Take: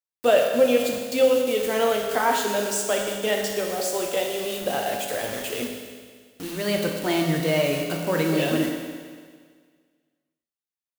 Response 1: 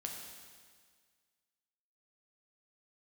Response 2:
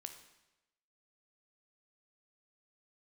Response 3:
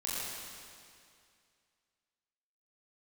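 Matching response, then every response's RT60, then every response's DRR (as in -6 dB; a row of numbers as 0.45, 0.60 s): 1; 1.7, 1.0, 2.3 s; 0.5, 6.0, -8.0 dB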